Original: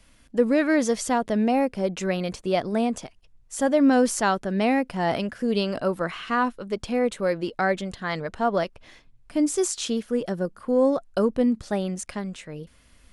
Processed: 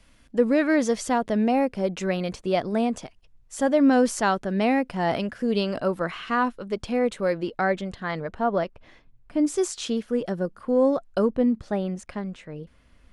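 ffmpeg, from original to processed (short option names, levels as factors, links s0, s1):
-af "asetnsamples=n=441:p=0,asendcmd='7.43 lowpass f 3200;8.11 lowpass f 1800;9.45 lowpass f 4600;11.31 lowpass f 1900',lowpass=f=6400:p=1"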